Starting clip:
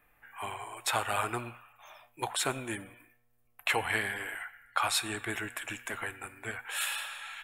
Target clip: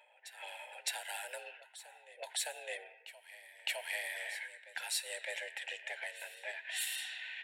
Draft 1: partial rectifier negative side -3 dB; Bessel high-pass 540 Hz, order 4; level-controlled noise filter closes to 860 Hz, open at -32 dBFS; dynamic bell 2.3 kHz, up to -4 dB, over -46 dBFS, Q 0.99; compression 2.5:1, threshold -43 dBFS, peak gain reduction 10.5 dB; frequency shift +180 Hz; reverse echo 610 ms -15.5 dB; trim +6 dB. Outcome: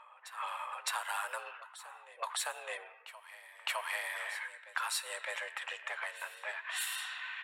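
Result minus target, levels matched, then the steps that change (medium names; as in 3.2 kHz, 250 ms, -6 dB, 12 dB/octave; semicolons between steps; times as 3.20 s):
1 kHz band +8.5 dB
add after compression: Butterworth band-stop 980 Hz, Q 1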